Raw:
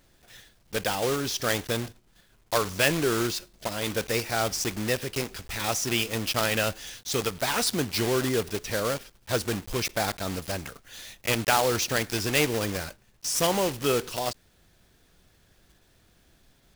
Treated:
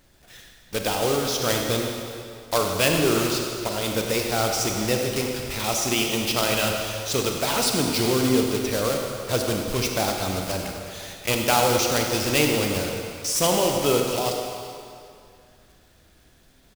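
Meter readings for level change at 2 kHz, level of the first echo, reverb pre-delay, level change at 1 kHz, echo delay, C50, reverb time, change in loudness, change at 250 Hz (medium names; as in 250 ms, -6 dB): +1.5 dB, -11.5 dB, 31 ms, +4.0 dB, 98 ms, 2.5 dB, 2.4 s, +4.0 dB, +5.5 dB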